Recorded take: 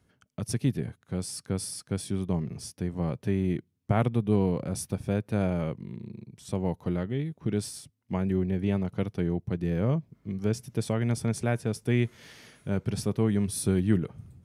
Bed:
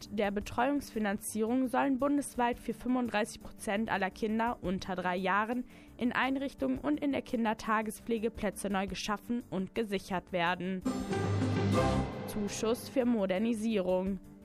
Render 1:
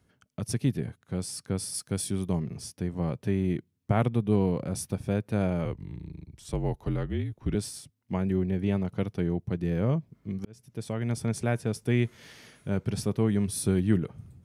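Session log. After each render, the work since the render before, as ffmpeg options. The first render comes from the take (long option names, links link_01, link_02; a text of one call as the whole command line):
ffmpeg -i in.wav -filter_complex "[0:a]asettb=1/sr,asplit=3[link_01][link_02][link_03];[link_01]atrim=end=1.744[link_04];[link_02]atrim=start=1.74:end=2.39,asetpts=PTS-STARTPTS,afade=type=in:duration=0.004:curve=qsin,afade=type=out:start_time=0.646:duration=0.004:curve=qsin,highshelf=frequency=5900:gain=9.5[link_05];[link_03]atrim=start=2.386[link_06];[link_04][link_05]acrossfade=duration=0.004:curve1=hsin:curve2=qsin[link_07];[link_07][link_06]acrossfade=duration=0.004:curve1=qsin:curve2=hsin,asettb=1/sr,asplit=3[link_08][link_09][link_10];[link_08]atrim=end=5.654[link_11];[link_09]atrim=start=5.65:end=7.55,asetpts=PTS-STARTPTS,afade=type=in:duration=0.004:curve=qsin,afade=type=out:start_time=1.896:duration=0.004:curve=qsin,afreqshift=-45[link_12];[link_10]atrim=start=7.546[link_13];[link_11][link_12]acrossfade=duration=0.004:curve1=hsin:curve2=qsin[link_14];[link_14][link_13]acrossfade=duration=0.004:curve1=qsin:curve2=hsin,asplit=2[link_15][link_16];[link_15]atrim=end=10.45,asetpts=PTS-STARTPTS,afade=type=out:start_time=10.446:duration=0.004:curve=hsin[link_17];[link_16]atrim=start=10.45,asetpts=PTS-STARTPTS,afade=type=in:duration=1.16:curve=qsin[link_18];[link_17][link_18]concat=n=2:v=0:a=1" out.wav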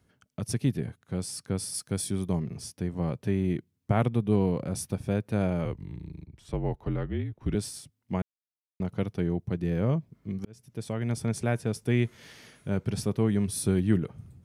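ffmpeg -i in.wav -filter_complex "[0:a]asettb=1/sr,asplit=3[link_01][link_02][link_03];[link_01]atrim=end=1.934[link_04];[link_02]atrim=start=1.93:end=2.37,asetpts=PTS-STARTPTS,afade=type=in:duration=0.004:curve=qsin,afade=type=out:start_time=0.436:duration=0.004:curve=qsin,bandreject=frequency=2800:width=11[link_05];[link_03]atrim=start=2.366[link_06];[link_04][link_05]acrossfade=duration=0.004:curve1=hsin:curve2=qsin[link_07];[link_07][link_06]acrossfade=duration=0.004:curve1=qsin:curve2=hsin,asettb=1/sr,asplit=3[link_08][link_09][link_10];[link_08]atrim=end=6.244[link_11];[link_09]atrim=start=6.24:end=7.41,asetpts=PTS-STARTPTS,afade=type=in:duration=0.004:curve=qsin,afade=type=out:start_time=1.166:duration=0.004:curve=qsin,bass=frequency=250:gain=-1,treble=frequency=4000:gain=-11[link_12];[link_10]atrim=start=7.406[link_13];[link_11][link_12]acrossfade=duration=0.004:curve1=hsin:curve2=qsin[link_14];[link_14][link_13]acrossfade=duration=0.004:curve1=qsin:curve2=hsin,asplit=3[link_15][link_16][link_17];[link_15]atrim=end=8.22,asetpts=PTS-STARTPTS,afade=type=out:start_time=8.216:duration=0.004:curve=hsin[link_18];[link_16]atrim=start=8.22:end=8.8,asetpts=PTS-STARTPTS,volume=0[link_19];[link_17]atrim=start=8.8,asetpts=PTS-STARTPTS,afade=type=in:duration=0.004:curve=hsin[link_20];[link_18][link_19][link_20]concat=n=3:v=0:a=1" out.wav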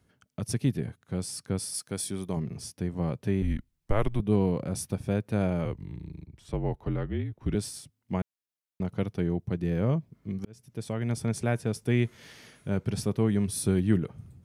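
ffmpeg -i in.wav -filter_complex "[0:a]asettb=1/sr,asplit=3[link_01][link_02][link_03];[link_01]atrim=end=1.594[link_04];[link_02]atrim=start=1.59:end=2.37,asetpts=PTS-STARTPTS,afade=type=in:duration=0.004:curve=qsin,afade=type=out:start_time=0.776:duration=0.004:curve=qsin,lowshelf=frequency=180:gain=-9.5[link_05];[link_03]atrim=start=2.366[link_06];[link_04][link_05]acrossfade=duration=0.004:curve1=hsin:curve2=qsin[link_07];[link_07][link_06]acrossfade=duration=0.004:curve1=qsin:curve2=hsin,asettb=1/sr,asplit=3[link_08][link_09][link_10];[link_08]atrim=end=3.424[link_11];[link_09]atrim=start=3.42:end=4.2,asetpts=PTS-STARTPTS,afade=type=in:duration=0.004:curve=qsin,afade=type=out:start_time=0.776:duration=0.004:curve=qsin,afreqshift=-110[link_12];[link_10]atrim=start=4.196[link_13];[link_11][link_12]acrossfade=duration=0.004:curve1=hsin:curve2=qsin[link_14];[link_14][link_13]acrossfade=duration=0.004:curve1=qsin:curve2=hsin" out.wav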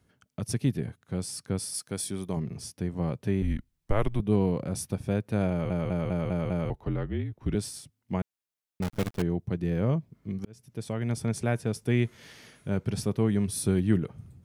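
ffmpeg -i in.wav -filter_complex "[0:a]asettb=1/sr,asplit=3[link_01][link_02][link_03];[link_01]atrim=end=8.824[link_04];[link_02]atrim=start=8.82:end=9.22,asetpts=PTS-STARTPTS,afade=type=in:duration=0.004:curve=qsin,afade=type=out:start_time=0.396:duration=0.004:curve=qsin,acrusher=bits=6:dc=4:mix=0:aa=0.000001[link_05];[link_03]atrim=start=9.216[link_06];[link_04][link_05]acrossfade=duration=0.004:curve1=hsin:curve2=qsin[link_07];[link_07][link_06]acrossfade=duration=0.004:curve1=qsin:curve2=hsin,asplit=7[link_08][link_09][link_10][link_11][link_12][link_13][link_14];[link_08]atrim=end=5.702[link_15];[link_09]atrim=start=5.498:end=5.702[link_16];[link_10]atrim=start=5.498:end=5.702[link_17];[link_11]atrim=start=5.498:end=5.702[link_18];[link_12]atrim=start=5.498:end=5.702[link_19];[link_13]atrim=start=5.498:end=5.702[link_20];[link_14]atrim=start=6.698[link_21];[link_15][link_16]acrossfade=duration=0.004:curve1=hsin:curve2=hsin[link_22];[link_22][link_17]acrossfade=duration=0.004:curve1=hsin:curve2=hsin[link_23];[link_23][link_18]acrossfade=duration=0.004:curve1=hsin:curve2=hsin[link_24];[link_24][link_19]acrossfade=duration=0.004:curve1=hsin:curve2=hsin[link_25];[link_25][link_20]acrossfade=duration=0.004:curve1=hsin:curve2=hsin[link_26];[link_26][link_21]acrossfade=duration=0.004:curve1=hsin:curve2=hsin" out.wav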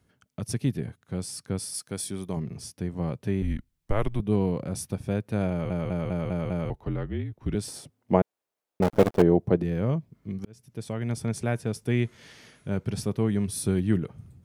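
ffmpeg -i in.wav -filter_complex "[0:a]asettb=1/sr,asplit=3[link_01][link_02][link_03];[link_01]atrim=end=7.684[link_04];[link_02]atrim=start=7.68:end=9.63,asetpts=PTS-STARTPTS,afade=type=in:duration=0.004:curve=qsin,afade=type=out:start_time=1.946:duration=0.004:curve=qsin,equalizer=frequency=550:width=0.5:gain=15[link_05];[link_03]atrim=start=9.626[link_06];[link_04][link_05]acrossfade=duration=0.004:curve1=hsin:curve2=qsin[link_07];[link_07][link_06]acrossfade=duration=0.004:curve1=qsin:curve2=hsin,asettb=1/sr,asplit=3[link_08][link_09][link_10];[link_08]atrim=end=12.024[link_11];[link_09]atrim=start=12.02:end=12.71,asetpts=PTS-STARTPTS,afade=type=in:duration=0.004:curve=qsin,afade=type=out:start_time=0.686:duration=0.004:curve=qsin,lowpass=11000[link_12];[link_10]atrim=start=12.706[link_13];[link_11][link_12]acrossfade=duration=0.004:curve1=hsin:curve2=qsin[link_14];[link_14][link_13]acrossfade=duration=0.004:curve1=qsin:curve2=hsin" out.wav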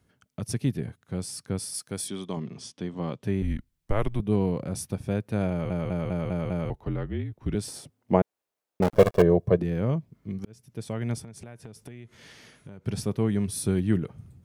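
ffmpeg -i in.wav -filter_complex "[0:a]asettb=1/sr,asplit=3[link_01][link_02][link_03];[link_01]atrim=end=2.084[link_04];[link_02]atrim=start=2.08:end=3.23,asetpts=PTS-STARTPTS,afade=type=in:duration=0.004:curve=qsin,afade=type=out:start_time=1.146:duration=0.004:curve=qsin,highpass=170,equalizer=frequency=250:width_type=q:width=4:gain=3,equalizer=frequency=1100:width_type=q:width=4:gain=4,equalizer=frequency=3300:width_type=q:width=4:gain=10,lowpass=frequency=8200:width=0.5412,lowpass=frequency=8200:width=1.3066[link_05];[link_03]atrim=start=3.226[link_06];[link_04][link_05]acrossfade=duration=0.004:curve1=hsin:curve2=qsin[link_07];[link_07][link_06]acrossfade=duration=0.004:curve1=qsin:curve2=hsin,asettb=1/sr,asplit=3[link_08][link_09][link_10];[link_08]atrim=end=8.954[link_11];[link_09]atrim=start=8.95:end=9.59,asetpts=PTS-STARTPTS,afade=type=in:duration=0.004:curve=qsin,afade=type=out:start_time=0.636:duration=0.004:curve=qsin,aecho=1:1:1.8:0.65,atrim=end_sample=28224[link_12];[link_10]atrim=start=9.586[link_13];[link_11][link_12]acrossfade=duration=0.004:curve1=hsin:curve2=qsin[link_14];[link_14][link_13]acrossfade=duration=0.004:curve1=qsin:curve2=hsin,asplit=3[link_15][link_16][link_17];[link_15]afade=type=out:start_time=11.2:duration=0.02[link_18];[link_16]acompressor=threshold=-39dB:ratio=10:attack=3.2:release=140:knee=1:detection=peak,afade=type=in:start_time=11.2:duration=0.02,afade=type=out:start_time=12.85:duration=0.02[link_19];[link_17]afade=type=in:start_time=12.85:duration=0.02[link_20];[link_18][link_19][link_20]amix=inputs=3:normalize=0" out.wav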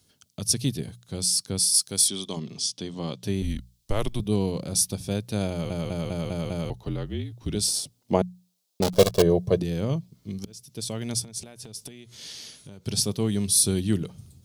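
ffmpeg -i in.wav -af "highshelf=frequency=2800:width_type=q:width=1.5:gain=13,bandreject=frequency=60:width_type=h:width=6,bandreject=frequency=120:width_type=h:width=6,bandreject=frequency=180:width_type=h:width=6" out.wav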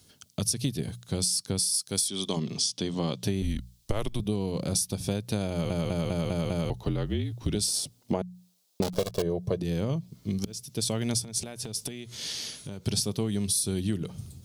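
ffmpeg -i in.wav -filter_complex "[0:a]asplit=2[link_01][link_02];[link_02]alimiter=limit=-14.5dB:level=0:latency=1:release=183,volume=-1dB[link_03];[link_01][link_03]amix=inputs=2:normalize=0,acompressor=threshold=-24dB:ratio=10" out.wav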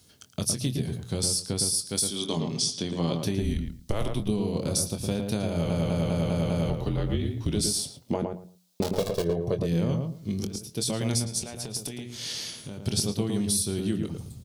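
ffmpeg -i in.wav -filter_complex "[0:a]asplit=2[link_01][link_02];[link_02]adelay=24,volume=-9.5dB[link_03];[link_01][link_03]amix=inputs=2:normalize=0,asplit=2[link_04][link_05];[link_05]adelay=112,lowpass=frequency=1500:poles=1,volume=-3.5dB,asplit=2[link_06][link_07];[link_07]adelay=112,lowpass=frequency=1500:poles=1,volume=0.2,asplit=2[link_08][link_09];[link_09]adelay=112,lowpass=frequency=1500:poles=1,volume=0.2[link_10];[link_06][link_08][link_10]amix=inputs=3:normalize=0[link_11];[link_04][link_11]amix=inputs=2:normalize=0" out.wav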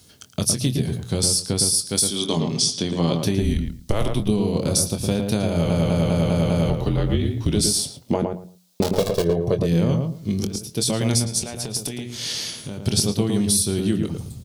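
ffmpeg -i in.wav -af "volume=6.5dB" out.wav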